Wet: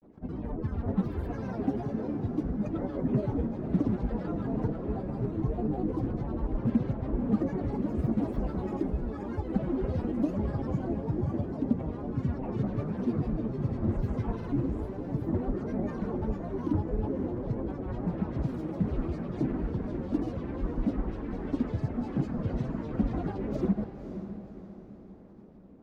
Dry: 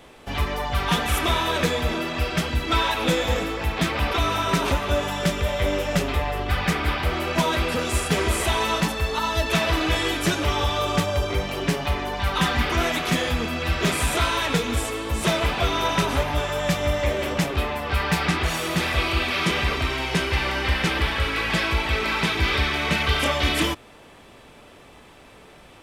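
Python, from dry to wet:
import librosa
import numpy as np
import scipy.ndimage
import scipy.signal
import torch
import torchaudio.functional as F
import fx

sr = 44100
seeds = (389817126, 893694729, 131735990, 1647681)

y = fx.high_shelf(x, sr, hz=3400.0, db=-10.5)
y = fx.granulator(y, sr, seeds[0], grain_ms=100.0, per_s=20.0, spray_ms=100.0, spread_st=12)
y = fx.filter_lfo_notch(y, sr, shape='saw_down', hz=6.1, low_hz=480.0, high_hz=7300.0, q=2.6)
y = fx.curve_eq(y, sr, hz=(100.0, 230.0, 3000.0), db=(0, 9, -23))
y = fx.echo_diffused(y, sr, ms=539, feedback_pct=45, wet_db=-10.0)
y = y * librosa.db_to_amplitude(-7.0)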